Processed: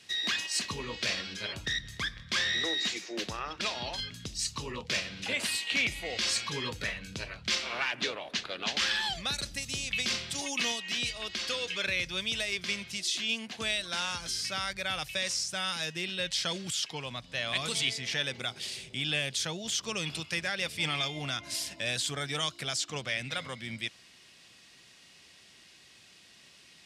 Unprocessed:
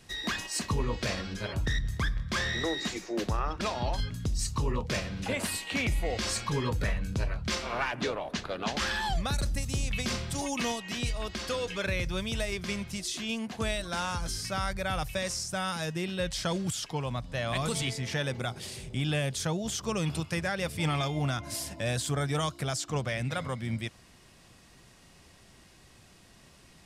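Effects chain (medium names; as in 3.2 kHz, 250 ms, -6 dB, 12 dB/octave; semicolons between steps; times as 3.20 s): frequency weighting D; trim -5.5 dB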